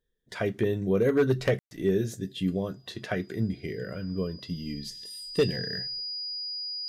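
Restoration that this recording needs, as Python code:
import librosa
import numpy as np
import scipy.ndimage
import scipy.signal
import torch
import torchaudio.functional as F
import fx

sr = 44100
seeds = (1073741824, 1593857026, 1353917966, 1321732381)

y = fx.fix_declip(x, sr, threshold_db=-16.0)
y = fx.notch(y, sr, hz=4900.0, q=30.0)
y = fx.fix_ambience(y, sr, seeds[0], print_start_s=0.0, print_end_s=0.5, start_s=1.59, end_s=1.71)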